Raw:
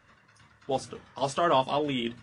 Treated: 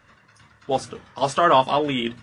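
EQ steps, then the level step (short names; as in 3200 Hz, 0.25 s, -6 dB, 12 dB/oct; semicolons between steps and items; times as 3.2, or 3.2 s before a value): dynamic EQ 1400 Hz, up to +5 dB, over -39 dBFS, Q 0.89; +5.0 dB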